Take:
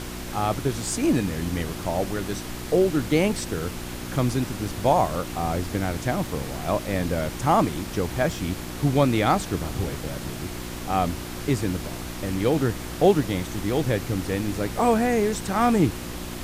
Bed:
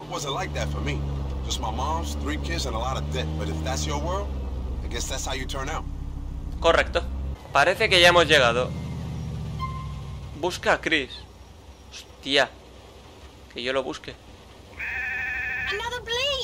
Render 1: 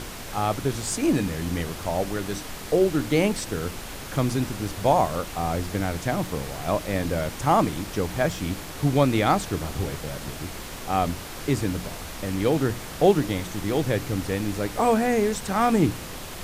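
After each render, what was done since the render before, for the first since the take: de-hum 60 Hz, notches 6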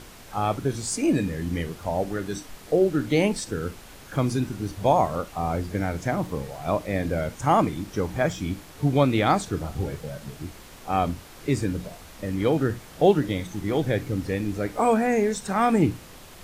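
noise print and reduce 9 dB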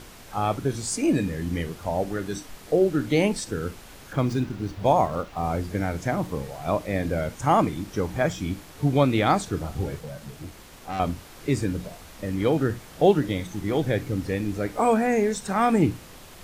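4.13–5.44 s: median filter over 5 samples; 9.99–11.00 s: valve stage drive 27 dB, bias 0.35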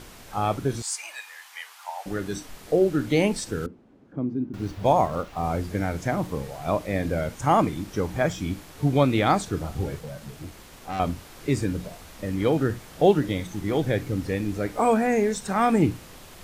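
0.82–2.06 s: elliptic high-pass 840 Hz, stop band 80 dB; 3.66–4.54 s: band-pass filter 260 Hz, Q 1.8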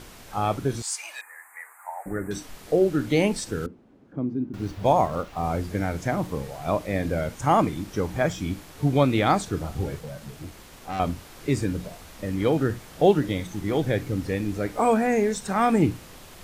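1.21–2.31 s: elliptic band-stop 2–8 kHz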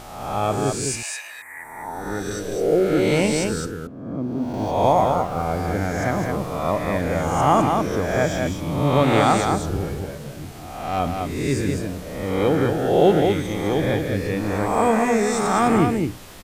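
reverse spectral sustain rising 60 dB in 1.10 s; delay 208 ms -4.5 dB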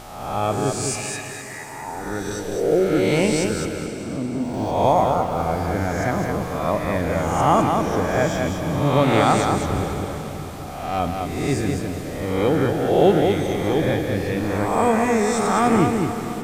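echo that smears into a reverb 454 ms, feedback 48%, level -11 dB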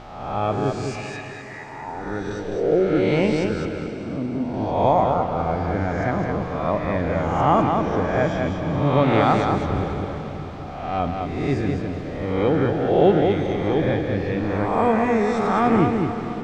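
distance through air 200 m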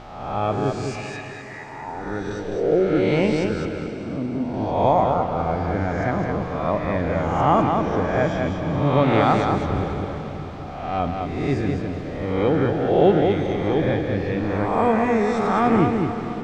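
no audible change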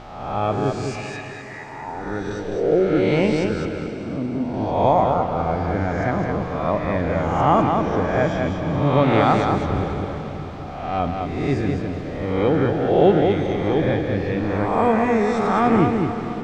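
trim +1 dB

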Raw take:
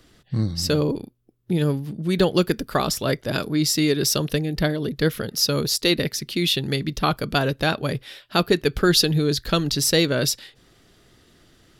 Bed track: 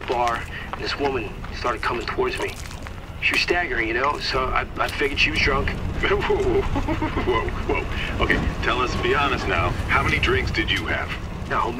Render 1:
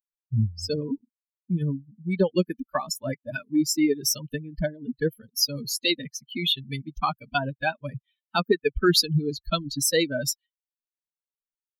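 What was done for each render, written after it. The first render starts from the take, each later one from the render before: expander on every frequency bin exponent 3; in parallel at +2.5 dB: compression, threshold -35 dBFS, peak gain reduction 17 dB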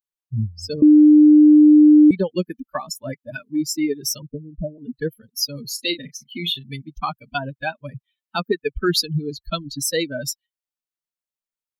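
0.82–2.11 s: bleep 301 Hz -6.5 dBFS; 4.22–4.78 s: steep low-pass 650 Hz; 5.72–6.72 s: doubling 35 ms -12 dB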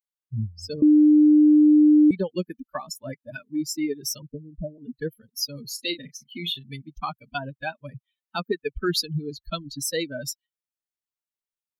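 trim -5 dB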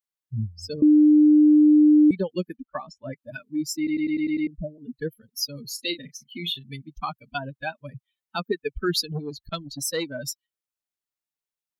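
2.56–3.16 s: Gaussian low-pass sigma 2.1 samples; 3.77 s: stutter in place 0.10 s, 7 plays; 9.12–10.19 s: transformer saturation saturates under 420 Hz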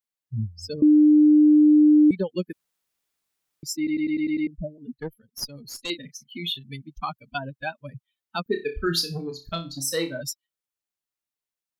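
2.53–3.63 s: room tone; 4.94–5.90 s: valve stage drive 19 dB, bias 0.75; 8.43–10.21 s: flutter echo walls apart 5.1 m, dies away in 0.27 s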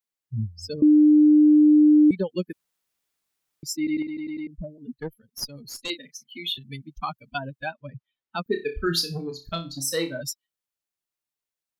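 4.02–4.76 s: compression, threshold -30 dBFS; 5.88–6.58 s: high-pass 330 Hz; 7.66–8.42 s: distance through air 140 m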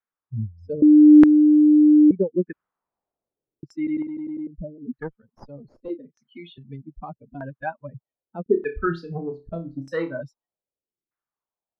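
LFO low-pass saw down 0.81 Hz 330–1600 Hz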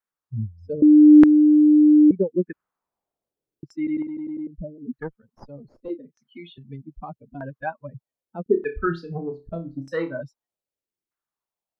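7.43–7.83 s: small resonant body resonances 460/1100 Hz, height 7 dB

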